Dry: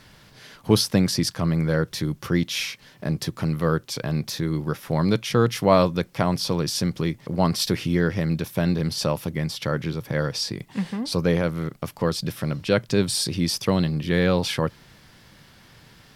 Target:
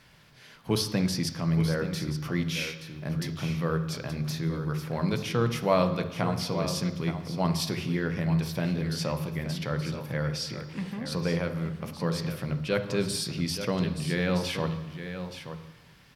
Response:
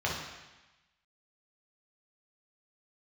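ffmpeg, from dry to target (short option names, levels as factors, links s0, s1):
-filter_complex "[0:a]equalizer=f=2500:t=o:w=0.31:g=2.5,aecho=1:1:875:0.316,asplit=2[s0][s1];[1:a]atrim=start_sample=2205[s2];[s1][s2]afir=irnorm=-1:irlink=0,volume=0.211[s3];[s0][s3]amix=inputs=2:normalize=0,volume=0.376"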